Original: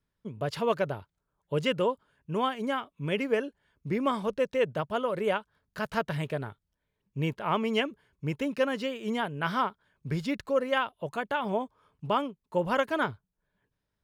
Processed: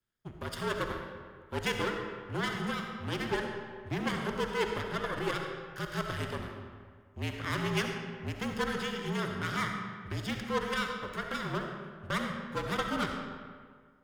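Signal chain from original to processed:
lower of the sound and its delayed copy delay 0.58 ms
harmonic generator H 8 −20 dB, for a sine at −15.5 dBFS
low-shelf EQ 160 Hz −10 dB
hum removal 66.52 Hz, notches 31
frequency shifter −51 Hz
on a send: convolution reverb RT60 1.8 s, pre-delay 25 ms, DRR 3.5 dB
on the sum: level −2 dB

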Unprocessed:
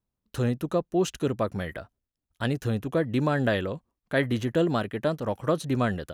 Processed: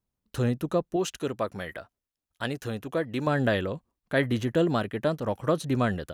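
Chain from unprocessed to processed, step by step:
0:00.96–0:03.27: low-shelf EQ 280 Hz −9.5 dB

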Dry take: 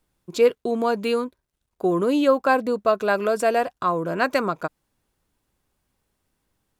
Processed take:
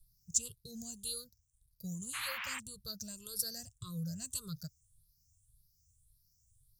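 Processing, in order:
rippled gain that drifts along the octave scale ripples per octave 0.63, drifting +1.8 Hz, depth 18 dB
elliptic band-stop filter 120–5,400 Hz, stop band 40 dB
0:02.13–0:02.58: noise in a band 980–2,900 Hz −44 dBFS
level +3 dB

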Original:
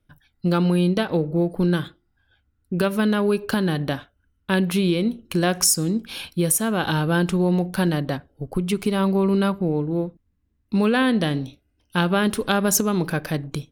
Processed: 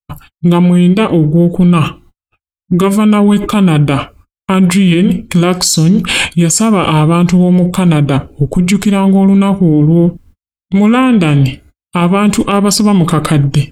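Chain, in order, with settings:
notch filter 1,900 Hz, Q 10
noise gate −57 dBFS, range −59 dB
reversed playback
downward compressor 6 to 1, threshold −27 dBFS, peak gain reduction 12.5 dB
reversed playback
formants moved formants −4 semitones
boost into a limiter +25.5 dB
level −1 dB

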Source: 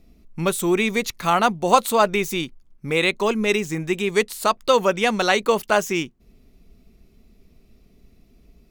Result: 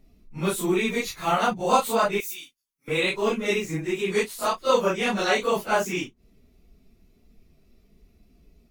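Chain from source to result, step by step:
random phases in long frames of 100 ms
0:02.20–0:02.88: first difference
level −4 dB

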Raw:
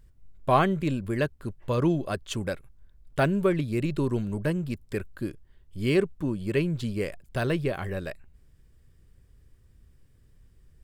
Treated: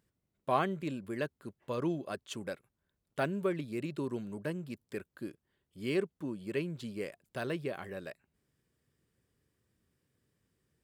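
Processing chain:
high-pass filter 180 Hz 12 dB per octave
level −8 dB

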